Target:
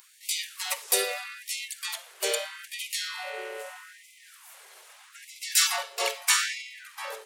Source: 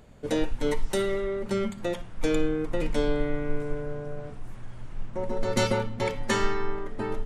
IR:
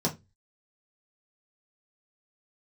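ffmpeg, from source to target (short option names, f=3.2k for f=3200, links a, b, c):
-filter_complex "[0:a]asplit=3[a][b][c];[b]asetrate=55563,aresample=44100,atempo=0.793701,volume=-1dB[d];[c]asetrate=58866,aresample=44100,atempo=0.749154,volume=-16dB[e];[a][d][e]amix=inputs=3:normalize=0,crystalizer=i=8.5:c=0,afftfilt=real='re*gte(b*sr/1024,350*pow(2000/350,0.5+0.5*sin(2*PI*0.79*pts/sr)))':imag='im*gte(b*sr/1024,350*pow(2000/350,0.5+0.5*sin(2*PI*0.79*pts/sr)))':win_size=1024:overlap=0.75,volume=-7.5dB"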